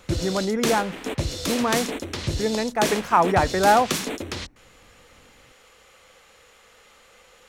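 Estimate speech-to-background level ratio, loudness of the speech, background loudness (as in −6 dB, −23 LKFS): 5.5 dB, −23.0 LKFS, −28.5 LKFS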